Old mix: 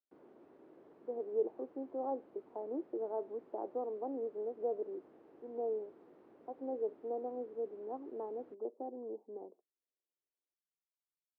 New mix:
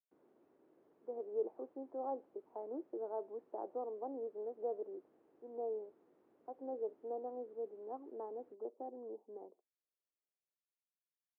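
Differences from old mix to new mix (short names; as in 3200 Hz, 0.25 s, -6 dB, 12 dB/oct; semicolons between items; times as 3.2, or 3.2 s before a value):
speech: add low shelf 440 Hz -7.5 dB; background -10.0 dB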